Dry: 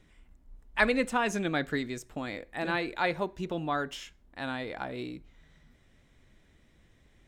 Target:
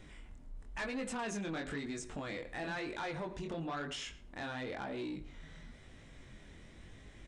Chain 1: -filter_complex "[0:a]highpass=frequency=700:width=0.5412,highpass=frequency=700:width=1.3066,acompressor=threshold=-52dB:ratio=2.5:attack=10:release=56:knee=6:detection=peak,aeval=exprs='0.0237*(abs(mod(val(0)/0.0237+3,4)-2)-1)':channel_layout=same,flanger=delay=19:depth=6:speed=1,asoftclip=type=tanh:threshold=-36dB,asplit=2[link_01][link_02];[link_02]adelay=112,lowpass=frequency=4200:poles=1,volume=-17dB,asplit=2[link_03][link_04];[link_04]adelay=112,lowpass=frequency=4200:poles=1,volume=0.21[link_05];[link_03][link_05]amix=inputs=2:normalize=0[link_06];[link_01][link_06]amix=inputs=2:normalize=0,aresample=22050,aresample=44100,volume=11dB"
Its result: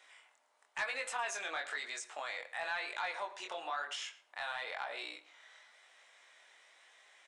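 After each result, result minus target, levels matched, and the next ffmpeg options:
soft clipping: distortion −12 dB; 500 Hz band −5.0 dB
-filter_complex "[0:a]highpass=frequency=700:width=0.5412,highpass=frequency=700:width=1.3066,acompressor=threshold=-52dB:ratio=2.5:attack=10:release=56:knee=6:detection=peak,aeval=exprs='0.0237*(abs(mod(val(0)/0.0237+3,4)-2)-1)':channel_layout=same,flanger=delay=19:depth=6:speed=1,asoftclip=type=tanh:threshold=-44.5dB,asplit=2[link_01][link_02];[link_02]adelay=112,lowpass=frequency=4200:poles=1,volume=-17dB,asplit=2[link_03][link_04];[link_04]adelay=112,lowpass=frequency=4200:poles=1,volume=0.21[link_05];[link_03][link_05]amix=inputs=2:normalize=0[link_06];[link_01][link_06]amix=inputs=2:normalize=0,aresample=22050,aresample=44100,volume=11dB"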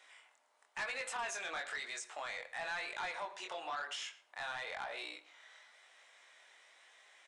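500 Hz band −5.0 dB
-filter_complex "[0:a]acompressor=threshold=-52dB:ratio=2.5:attack=10:release=56:knee=6:detection=peak,aeval=exprs='0.0237*(abs(mod(val(0)/0.0237+3,4)-2)-1)':channel_layout=same,flanger=delay=19:depth=6:speed=1,asoftclip=type=tanh:threshold=-44.5dB,asplit=2[link_01][link_02];[link_02]adelay=112,lowpass=frequency=4200:poles=1,volume=-17dB,asplit=2[link_03][link_04];[link_04]adelay=112,lowpass=frequency=4200:poles=1,volume=0.21[link_05];[link_03][link_05]amix=inputs=2:normalize=0[link_06];[link_01][link_06]amix=inputs=2:normalize=0,aresample=22050,aresample=44100,volume=11dB"

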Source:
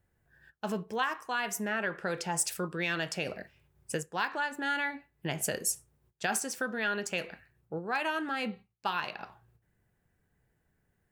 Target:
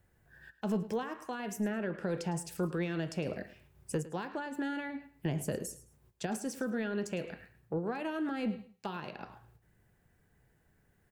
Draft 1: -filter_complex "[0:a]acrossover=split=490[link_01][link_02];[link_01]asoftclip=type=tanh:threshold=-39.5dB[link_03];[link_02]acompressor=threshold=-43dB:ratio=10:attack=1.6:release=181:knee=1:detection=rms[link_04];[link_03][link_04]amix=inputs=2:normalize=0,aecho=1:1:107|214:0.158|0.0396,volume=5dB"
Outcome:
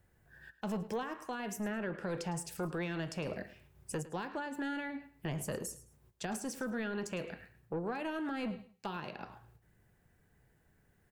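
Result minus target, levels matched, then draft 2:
soft clipping: distortion +12 dB
-filter_complex "[0:a]acrossover=split=490[link_01][link_02];[link_01]asoftclip=type=tanh:threshold=-29.5dB[link_03];[link_02]acompressor=threshold=-43dB:ratio=10:attack=1.6:release=181:knee=1:detection=rms[link_04];[link_03][link_04]amix=inputs=2:normalize=0,aecho=1:1:107|214:0.158|0.0396,volume=5dB"

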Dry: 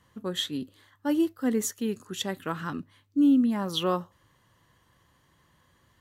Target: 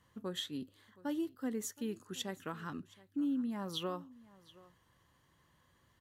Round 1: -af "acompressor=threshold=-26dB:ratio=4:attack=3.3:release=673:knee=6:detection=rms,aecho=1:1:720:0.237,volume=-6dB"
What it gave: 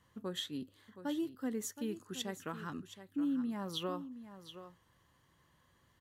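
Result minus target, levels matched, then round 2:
echo-to-direct +9 dB
-af "acompressor=threshold=-26dB:ratio=4:attack=3.3:release=673:knee=6:detection=rms,aecho=1:1:720:0.0841,volume=-6dB"

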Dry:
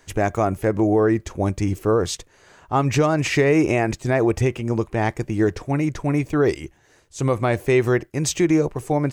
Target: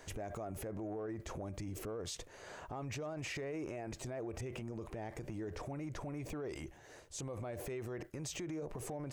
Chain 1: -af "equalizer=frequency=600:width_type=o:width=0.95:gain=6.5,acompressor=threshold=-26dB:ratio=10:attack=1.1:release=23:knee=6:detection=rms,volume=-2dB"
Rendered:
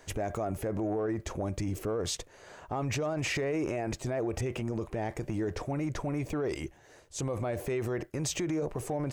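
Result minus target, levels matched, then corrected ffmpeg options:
downward compressor: peak gain reduction −10.5 dB
-af "equalizer=frequency=600:width_type=o:width=0.95:gain=6.5,acompressor=threshold=-37.5dB:ratio=10:attack=1.1:release=23:knee=6:detection=rms,volume=-2dB"

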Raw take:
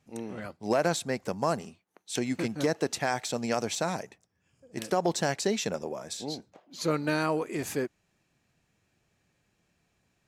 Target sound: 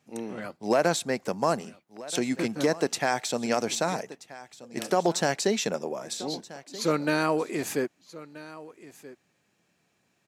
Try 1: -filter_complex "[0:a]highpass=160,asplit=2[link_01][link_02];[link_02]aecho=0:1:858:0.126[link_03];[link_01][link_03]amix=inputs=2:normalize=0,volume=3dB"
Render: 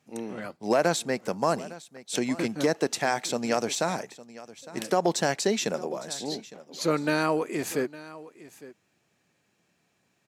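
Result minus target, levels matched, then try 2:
echo 422 ms early
-filter_complex "[0:a]highpass=160,asplit=2[link_01][link_02];[link_02]aecho=0:1:1280:0.126[link_03];[link_01][link_03]amix=inputs=2:normalize=0,volume=3dB"

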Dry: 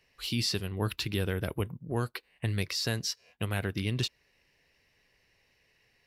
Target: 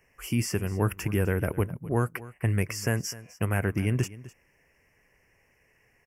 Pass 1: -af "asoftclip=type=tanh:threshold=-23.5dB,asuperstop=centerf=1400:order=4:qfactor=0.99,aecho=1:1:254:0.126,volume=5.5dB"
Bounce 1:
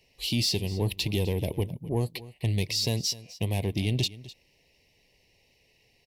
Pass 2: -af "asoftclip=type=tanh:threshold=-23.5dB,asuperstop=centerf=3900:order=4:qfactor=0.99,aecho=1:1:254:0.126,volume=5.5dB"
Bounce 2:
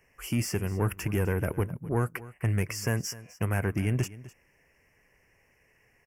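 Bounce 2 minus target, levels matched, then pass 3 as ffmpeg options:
soft clipping: distortion +16 dB
-af "asoftclip=type=tanh:threshold=-13.5dB,asuperstop=centerf=3900:order=4:qfactor=0.99,aecho=1:1:254:0.126,volume=5.5dB"

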